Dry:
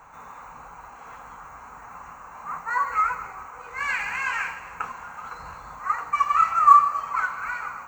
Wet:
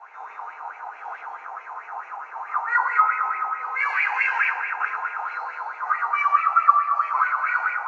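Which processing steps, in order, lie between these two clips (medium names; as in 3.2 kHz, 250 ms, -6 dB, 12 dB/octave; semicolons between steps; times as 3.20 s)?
elliptic band-pass 400–5500 Hz, stop band 40 dB; band-stop 1.1 kHz, Q 7.3; compression 4:1, threshold -26 dBFS, peak gain reduction 10.5 dB; bucket-brigade echo 117 ms, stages 2048, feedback 76%, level -7 dB; simulated room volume 160 m³, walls furnished, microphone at 3.4 m; sweeping bell 4.6 Hz 790–2400 Hz +16 dB; trim -9.5 dB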